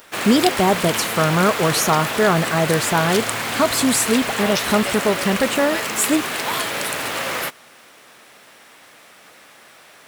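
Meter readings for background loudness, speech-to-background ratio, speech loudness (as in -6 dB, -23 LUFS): -23.0 LUFS, 3.5 dB, -19.5 LUFS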